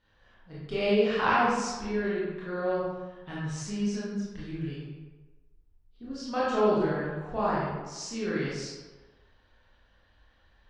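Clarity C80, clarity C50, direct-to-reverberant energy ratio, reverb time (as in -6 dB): 1.0 dB, -2.0 dB, -9.5 dB, 1.3 s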